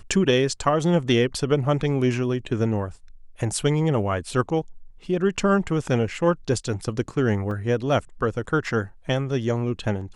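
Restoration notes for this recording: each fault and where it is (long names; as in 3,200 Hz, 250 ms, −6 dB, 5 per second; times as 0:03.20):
0:07.51: drop-out 2.6 ms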